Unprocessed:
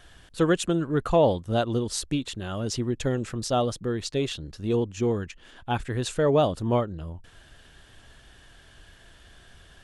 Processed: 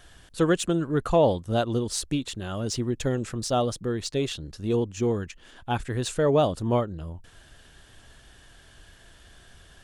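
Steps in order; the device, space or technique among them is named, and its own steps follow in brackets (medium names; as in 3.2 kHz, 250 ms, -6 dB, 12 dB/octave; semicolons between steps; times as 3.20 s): exciter from parts (in parallel at -6 dB: high-pass 4.1 kHz 12 dB/octave + saturation -36.5 dBFS, distortion -7 dB)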